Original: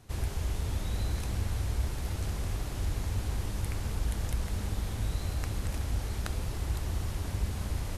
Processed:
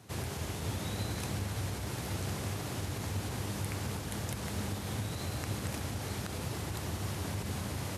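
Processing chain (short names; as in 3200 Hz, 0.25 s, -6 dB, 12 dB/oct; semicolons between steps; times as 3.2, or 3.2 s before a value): limiter -24 dBFS, peak gain reduction 8.5 dB; HPF 100 Hz 24 dB/oct; gain +3 dB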